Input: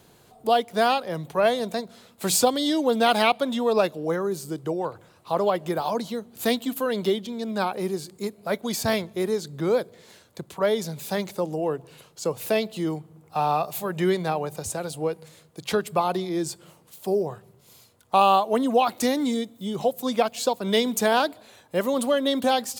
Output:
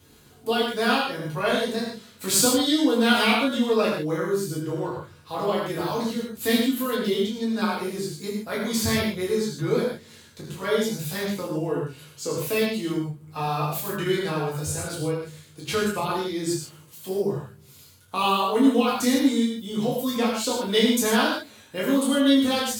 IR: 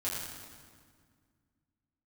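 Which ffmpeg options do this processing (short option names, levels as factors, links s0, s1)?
-filter_complex "[0:a]equalizer=f=700:t=o:w=0.93:g=-10[s0];[1:a]atrim=start_sample=2205,afade=t=out:st=0.22:d=0.01,atrim=end_sample=10143[s1];[s0][s1]afir=irnorm=-1:irlink=0"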